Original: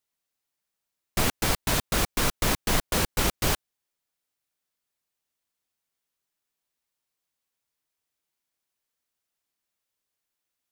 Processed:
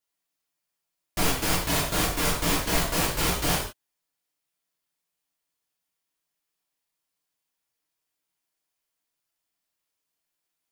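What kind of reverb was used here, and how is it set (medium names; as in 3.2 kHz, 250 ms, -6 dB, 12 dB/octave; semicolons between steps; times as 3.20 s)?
gated-style reverb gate 190 ms falling, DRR -5 dB; trim -5 dB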